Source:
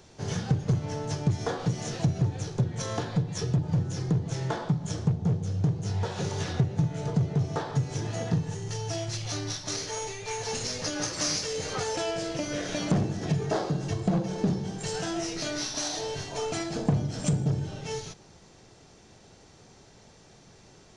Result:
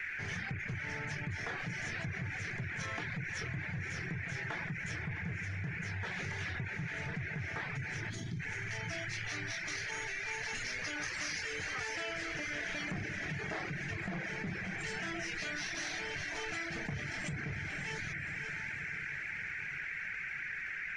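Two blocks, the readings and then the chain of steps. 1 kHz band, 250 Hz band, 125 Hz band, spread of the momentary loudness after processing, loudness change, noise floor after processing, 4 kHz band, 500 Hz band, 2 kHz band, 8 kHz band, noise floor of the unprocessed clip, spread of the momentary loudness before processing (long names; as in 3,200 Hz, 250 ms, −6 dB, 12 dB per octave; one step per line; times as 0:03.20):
−9.0 dB, −14.0 dB, −14.0 dB, 2 LU, −8.5 dB, −41 dBFS, −8.5 dB, −14.0 dB, +7.0 dB, −12.0 dB, −55 dBFS, 6 LU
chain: feedback delay with all-pass diffusion 592 ms, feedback 51%, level −9.5 dB
surface crackle 180 per second −54 dBFS
graphic EQ with 10 bands 125 Hz −8 dB, 250 Hz −6 dB, 500 Hz −10 dB, 1,000 Hz −6 dB, 2,000 Hz +12 dB, 4,000 Hz −6 dB, 8,000 Hz −6 dB
noise in a band 1,500–2,400 Hz −40 dBFS
reverb reduction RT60 0.53 s
high-shelf EQ 8,900 Hz −8.5 dB
gain on a spectral selection 0:08.10–0:08.40, 430–3,000 Hz −16 dB
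envelope flattener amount 70%
level −9 dB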